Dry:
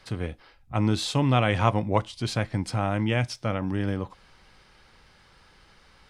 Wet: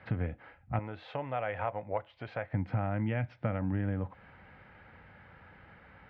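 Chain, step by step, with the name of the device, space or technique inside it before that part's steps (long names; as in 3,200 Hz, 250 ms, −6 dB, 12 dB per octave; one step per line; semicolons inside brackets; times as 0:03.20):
bass amplifier (downward compressor 4 to 1, threshold −34 dBFS, peak gain reduction 16 dB; loudspeaker in its box 80–2,100 Hz, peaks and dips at 92 Hz +5 dB, 380 Hz −8 dB, 1,100 Hz −8 dB)
0:00.79–0:02.53: low shelf with overshoot 360 Hz −11 dB, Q 1.5
level +5 dB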